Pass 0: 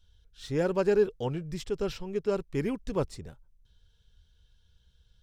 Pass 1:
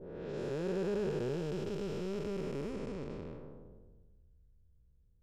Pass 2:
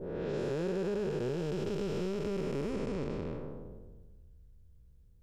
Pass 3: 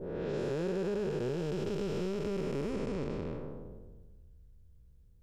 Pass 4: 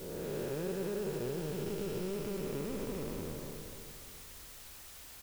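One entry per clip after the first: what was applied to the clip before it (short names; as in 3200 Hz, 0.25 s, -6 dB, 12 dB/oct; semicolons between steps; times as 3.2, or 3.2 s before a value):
time blur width 1 s; low-pass opened by the level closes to 350 Hz, open at -34.5 dBFS
compressor, threshold -38 dBFS, peak gain reduction 7.5 dB; gain +7.5 dB
nothing audible
requantised 8-bit, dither triangular; feedback echo 0.291 s, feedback 46%, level -9.5 dB; gain -4 dB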